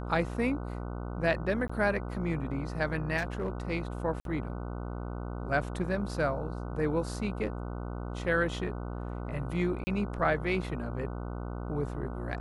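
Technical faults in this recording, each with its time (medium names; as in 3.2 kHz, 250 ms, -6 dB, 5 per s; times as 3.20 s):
buzz 60 Hz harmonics 25 -37 dBFS
1.68–1.70 s: dropout 15 ms
3.17–3.50 s: clipped -26.5 dBFS
4.20–4.25 s: dropout 52 ms
9.84–9.87 s: dropout 30 ms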